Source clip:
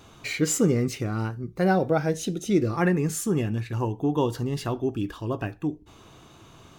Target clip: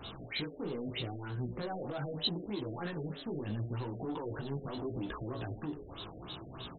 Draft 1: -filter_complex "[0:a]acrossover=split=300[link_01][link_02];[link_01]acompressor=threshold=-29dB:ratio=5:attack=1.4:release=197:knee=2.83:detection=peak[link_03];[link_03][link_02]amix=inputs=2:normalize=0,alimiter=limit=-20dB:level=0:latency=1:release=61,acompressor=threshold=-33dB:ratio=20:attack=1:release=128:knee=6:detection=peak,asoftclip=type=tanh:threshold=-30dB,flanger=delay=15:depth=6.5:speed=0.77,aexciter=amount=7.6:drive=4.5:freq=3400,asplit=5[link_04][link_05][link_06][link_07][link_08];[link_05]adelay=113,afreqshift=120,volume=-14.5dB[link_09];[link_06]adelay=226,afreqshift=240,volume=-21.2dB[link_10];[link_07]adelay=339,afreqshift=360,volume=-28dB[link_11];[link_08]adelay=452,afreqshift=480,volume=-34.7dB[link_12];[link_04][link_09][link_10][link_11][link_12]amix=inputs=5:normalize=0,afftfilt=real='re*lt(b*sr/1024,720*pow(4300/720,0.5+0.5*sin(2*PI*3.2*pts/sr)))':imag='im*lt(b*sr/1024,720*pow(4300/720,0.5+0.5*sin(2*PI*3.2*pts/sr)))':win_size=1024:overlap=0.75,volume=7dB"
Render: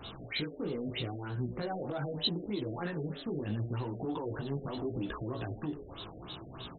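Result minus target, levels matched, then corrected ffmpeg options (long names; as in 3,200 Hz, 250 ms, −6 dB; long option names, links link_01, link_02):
soft clipping: distortion −10 dB
-filter_complex "[0:a]acrossover=split=300[link_01][link_02];[link_01]acompressor=threshold=-29dB:ratio=5:attack=1.4:release=197:knee=2.83:detection=peak[link_03];[link_03][link_02]amix=inputs=2:normalize=0,alimiter=limit=-20dB:level=0:latency=1:release=61,acompressor=threshold=-33dB:ratio=20:attack=1:release=128:knee=6:detection=peak,asoftclip=type=tanh:threshold=-37dB,flanger=delay=15:depth=6.5:speed=0.77,aexciter=amount=7.6:drive=4.5:freq=3400,asplit=5[link_04][link_05][link_06][link_07][link_08];[link_05]adelay=113,afreqshift=120,volume=-14.5dB[link_09];[link_06]adelay=226,afreqshift=240,volume=-21.2dB[link_10];[link_07]adelay=339,afreqshift=360,volume=-28dB[link_11];[link_08]adelay=452,afreqshift=480,volume=-34.7dB[link_12];[link_04][link_09][link_10][link_11][link_12]amix=inputs=5:normalize=0,afftfilt=real='re*lt(b*sr/1024,720*pow(4300/720,0.5+0.5*sin(2*PI*3.2*pts/sr)))':imag='im*lt(b*sr/1024,720*pow(4300/720,0.5+0.5*sin(2*PI*3.2*pts/sr)))':win_size=1024:overlap=0.75,volume=7dB"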